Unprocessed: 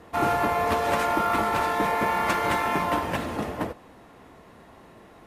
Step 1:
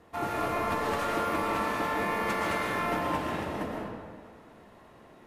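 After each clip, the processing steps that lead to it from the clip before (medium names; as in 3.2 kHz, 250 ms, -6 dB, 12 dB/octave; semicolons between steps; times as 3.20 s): algorithmic reverb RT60 1.7 s, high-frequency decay 0.65×, pre-delay 80 ms, DRR -3 dB; trim -8.5 dB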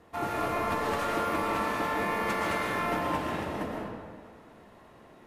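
no audible change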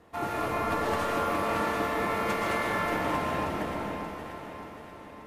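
echo whose repeats swap between lows and highs 291 ms, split 1.4 kHz, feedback 72%, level -5 dB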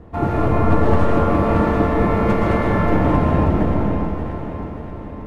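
tilt EQ -4.5 dB/octave; trim +7 dB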